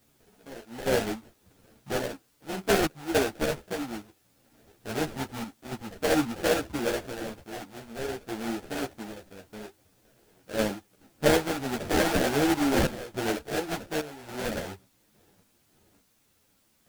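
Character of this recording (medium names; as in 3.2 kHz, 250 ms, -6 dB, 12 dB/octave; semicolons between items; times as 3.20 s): aliases and images of a low sample rate 1.1 kHz, jitter 20%; random-step tremolo, depth 80%; a quantiser's noise floor 12-bit, dither triangular; a shimmering, thickened sound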